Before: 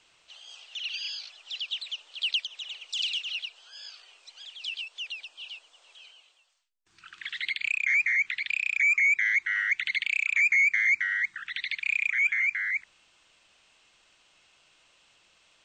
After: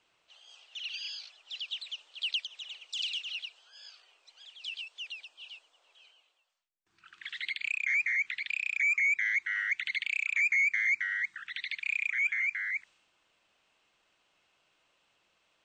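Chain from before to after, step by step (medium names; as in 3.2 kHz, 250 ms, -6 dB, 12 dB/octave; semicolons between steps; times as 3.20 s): bass shelf 100 Hz -8.5 dB; tape noise reduction on one side only decoder only; trim -4.5 dB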